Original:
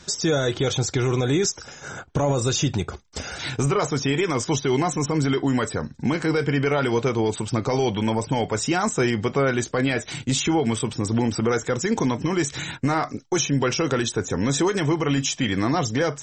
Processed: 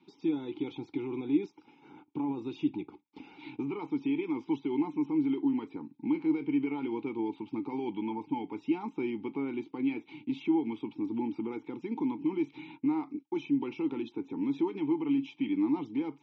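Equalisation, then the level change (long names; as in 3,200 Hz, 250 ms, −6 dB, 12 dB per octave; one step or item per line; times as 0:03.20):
formant filter u
loudspeaker in its box 140–4,000 Hz, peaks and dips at 700 Hz −8 dB, 1,100 Hz −4 dB, 2,000 Hz −9 dB
+1.0 dB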